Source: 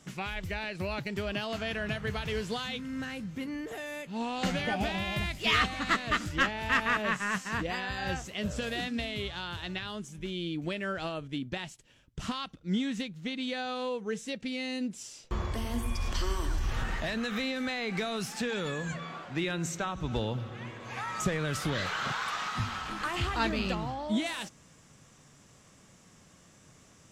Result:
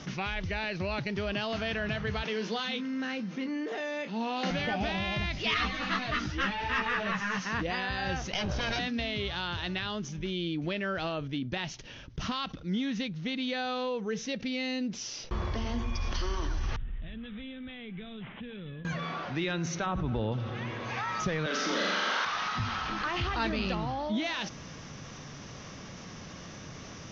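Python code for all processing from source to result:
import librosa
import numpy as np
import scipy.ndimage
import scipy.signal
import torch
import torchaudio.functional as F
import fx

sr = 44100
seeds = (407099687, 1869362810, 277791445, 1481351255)

y = fx.chain(x, sr, fx.cheby1_highpass(hz=200.0, order=4),
    fx.doubler(ms=27.0, db=-11.0), at=(2.23, 4.51))
y = fx.chain(y, sr, fx.doubler(ms=16.0, db=-2.5),
    fx.ensemble(), at=(5.54, 7.44))
y = fx.chain(y, sr, fx.lower_of_two(delay_ms=1.3),
    fx.lowpass(hz=6700.0, slope=12),
    fx.env_flatten(amount_pct=100), at=(8.33, 8.79))
y = fx.chain(y, sr, fx.tone_stack(knobs='10-0-1'),
    fx.resample_bad(factor=6, down='none', up='filtered'), at=(16.76, 18.85))
y = fx.chain(y, sr, fx.spacing_loss(db_at_10k=28),
    fx.env_flatten(amount_pct=70), at=(19.86, 20.32))
y = fx.chain(y, sr, fx.steep_highpass(hz=190.0, slope=72),
    fx.high_shelf(hz=7000.0, db=6.5),
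    fx.room_flutter(wall_m=7.3, rt60_s=1.2), at=(21.46, 22.25))
y = scipy.signal.sosfilt(scipy.signal.butter(16, 6300.0, 'lowpass', fs=sr, output='sos'), y)
y = fx.env_flatten(y, sr, amount_pct=50)
y = F.gain(torch.from_numpy(y), -3.0).numpy()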